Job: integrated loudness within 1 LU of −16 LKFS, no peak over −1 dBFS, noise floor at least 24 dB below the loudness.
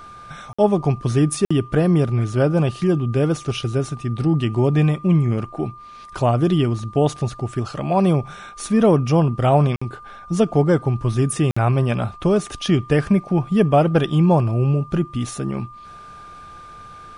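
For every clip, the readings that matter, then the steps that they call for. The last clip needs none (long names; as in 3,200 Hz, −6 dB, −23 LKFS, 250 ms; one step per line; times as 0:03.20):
number of dropouts 4; longest dropout 55 ms; interfering tone 1,200 Hz; level of the tone −38 dBFS; integrated loudness −19.5 LKFS; sample peak −4.5 dBFS; target loudness −16.0 LKFS
→ repair the gap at 0:00.53/0:01.45/0:09.76/0:11.51, 55 ms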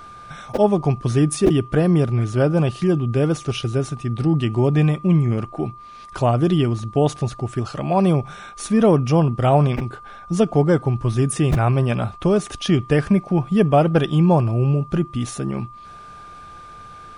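number of dropouts 0; interfering tone 1,200 Hz; level of the tone −38 dBFS
→ notch filter 1,200 Hz, Q 30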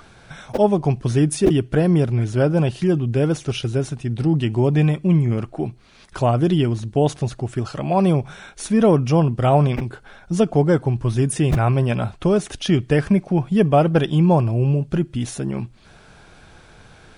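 interfering tone none found; integrated loudness −19.5 LKFS; sample peak −3.5 dBFS; target loudness −16.0 LKFS
→ level +3.5 dB
brickwall limiter −1 dBFS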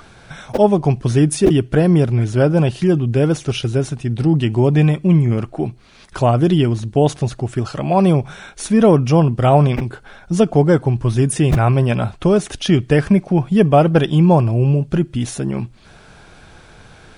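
integrated loudness −16.0 LKFS; sample peak −1.0 dBFS; background noise floor −45 dBFS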